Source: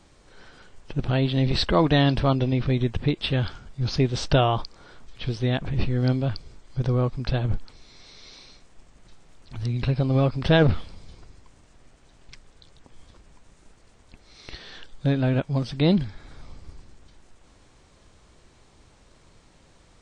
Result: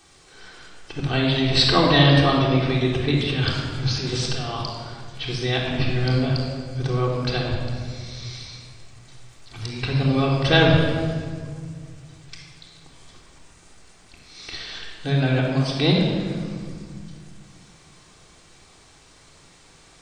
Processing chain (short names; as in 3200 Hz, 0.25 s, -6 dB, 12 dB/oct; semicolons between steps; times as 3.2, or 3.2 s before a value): tilt +2.5 dB/oct; 3.11–4.56 negative-ratio compressor -32 dBFS, ratio -1; shoebox room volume 2900 m³, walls mixed, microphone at 3.6 m